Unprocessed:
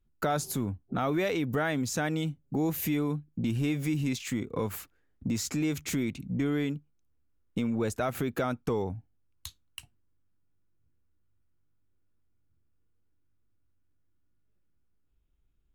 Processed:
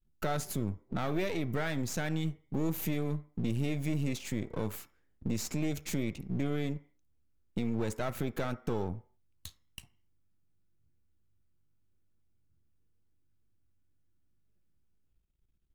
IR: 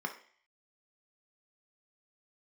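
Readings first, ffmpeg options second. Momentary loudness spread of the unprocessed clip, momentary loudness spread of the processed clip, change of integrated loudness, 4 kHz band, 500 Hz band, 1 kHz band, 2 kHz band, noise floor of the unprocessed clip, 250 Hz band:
12 LU, 10 LU, −4.0 dB, −4.0 dB, −4.5 dB, −5.5 dB, −4.5 dB, −70 dBFS, −4.5 dB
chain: -filter_complex "[0:a]aeval=exprs='if(lt(val(0),0),0.251*val(0),val(0))':channel_layout=same,asplit=2[link_01][link_02];[1:a]atrim=start_sample=2205,afade=type=out:start_time=0.34:duration=0.01,atrim=end_sample=15435[link_03];[link_02][link_03]afir=irnorm=-1:irlink=0,volume=-12.5dB[link_04];[link_01][link_04]amix=inputs=2:normalize=0"

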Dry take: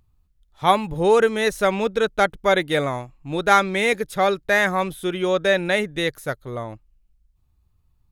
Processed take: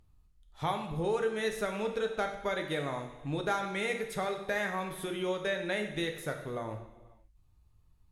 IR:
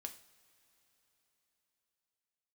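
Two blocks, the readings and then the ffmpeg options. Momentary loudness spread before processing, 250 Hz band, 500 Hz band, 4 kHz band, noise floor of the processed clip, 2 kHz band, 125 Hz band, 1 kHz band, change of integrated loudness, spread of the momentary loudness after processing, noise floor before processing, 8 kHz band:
12 LU, −11.0 dB, −12.5 dB, −12.5 dB, −65 dBFS, −13.5 dB, −9.0 dB, −14.5 dB, −13.0 dB, 6 LU, −64 dBFS, −11.0 dB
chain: -filter_complex "[0:a]acompressor=threshold=-33dB:ratio=3[link_01];[1:a]atrim=start_sample=2205,afade=type=out:start_time=0.35:duration=0.01,atrim=end_sample=15876,asetrate=24255,aresample=44100[link_02];[link_01][link_02]afir=irnorm=-1:irlink=0"

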